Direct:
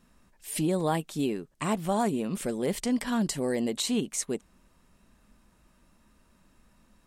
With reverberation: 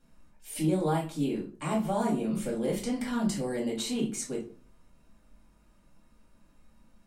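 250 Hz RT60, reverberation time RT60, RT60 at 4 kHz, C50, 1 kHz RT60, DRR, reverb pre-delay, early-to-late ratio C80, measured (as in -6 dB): 0.55 s, 0.40 s, 0.30 s, 9.0 dB, 0.35 s, -4.5 dB, 3 ms, 15.0 dB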